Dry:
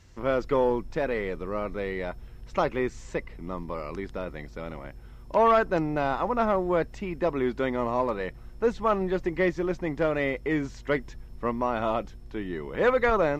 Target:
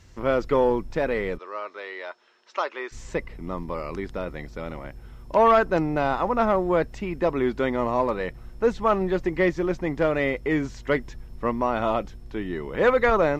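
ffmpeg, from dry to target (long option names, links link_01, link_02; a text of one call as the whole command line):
ffmpeg -i in.wav -filter_complex "[0:a]asplit=3[link_01][link_02][link_03];[link_01]afade=type=out:start_time=1.37:duration=0.02[link_04];[link_02]highpass=frequency=470:width=0.5412,highpass=frequency=470:width=1.3066,equalizer=frequency=490:width_type=q:width=4:gain=-9,equalizer=frequency=740:width_type=q:width=4:gain=-8,equalizer=frequency=2200:width_type=q:width=4:gain=-4,lowpass=frequency=6200:width=0.5412,lowpass=frequency=6200:width=1.3066,afade=type=in:start_time=1.37:duration=0.02,afade=type=out:start_time=2.91:duration=0.02[link_05];[link_03]afade=type=in:start_time=2.91:duration=0.02[link_06];[link_04][link_05][link_06]amix=inputs=3:normalize=0,volume=3dB" out.wav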